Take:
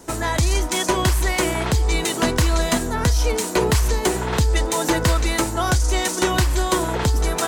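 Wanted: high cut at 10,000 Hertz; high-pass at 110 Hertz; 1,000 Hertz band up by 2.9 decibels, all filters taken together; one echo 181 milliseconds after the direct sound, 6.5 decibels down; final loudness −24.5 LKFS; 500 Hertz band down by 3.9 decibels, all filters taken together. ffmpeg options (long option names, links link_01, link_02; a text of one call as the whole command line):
ffmpeg -i in.wav -af "highpass=110,lowpass=10000,equalizer=frequency=500:width_type=o:gain=-7,equalizer=frequency=1000:width_type=o:gain=5.5,aecho=1:1:181:0.473,volume=-3.5dB" out.wav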